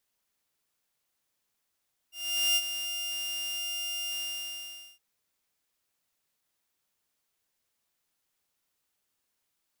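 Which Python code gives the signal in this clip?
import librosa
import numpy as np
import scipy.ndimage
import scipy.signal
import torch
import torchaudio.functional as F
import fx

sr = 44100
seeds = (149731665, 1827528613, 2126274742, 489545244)

y = fx.adsr_tone(sr, wave='saw', hz=2800.0, attack_ms=441.0, decay_ms=46.0, sustain_db=-10.0, held_s=2.07, release_ms=797.0, level_db=-19.5)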